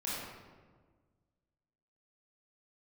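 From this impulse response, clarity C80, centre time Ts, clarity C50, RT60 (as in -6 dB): 0.0 dB, 0.105 s, -3.0 dB, 1.5 s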